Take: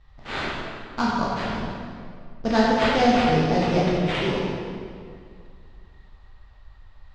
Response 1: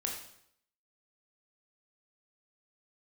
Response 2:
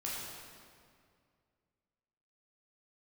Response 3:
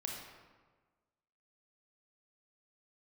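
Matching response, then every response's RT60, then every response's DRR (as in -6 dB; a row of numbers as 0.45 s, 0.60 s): 2; 0.70 s, 2.2 s, 1.4 s; -0.5 dB, -6.5 dB, -1.0 dB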